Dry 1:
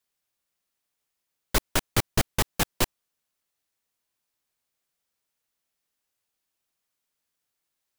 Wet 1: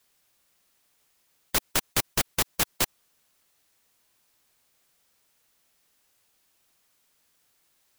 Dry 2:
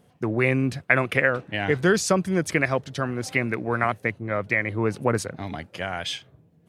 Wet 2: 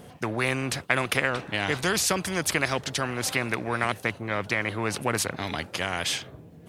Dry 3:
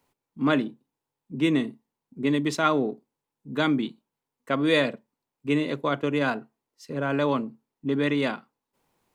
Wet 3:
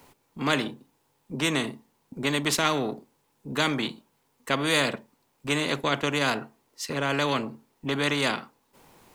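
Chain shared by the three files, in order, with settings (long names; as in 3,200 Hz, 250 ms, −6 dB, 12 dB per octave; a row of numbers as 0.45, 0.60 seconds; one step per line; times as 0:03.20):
every bin compressed towards the loudest bin 2 to 1
loudness normalisation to −27 LKFS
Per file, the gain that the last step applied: −1.0, −2.5, +0.5 decibels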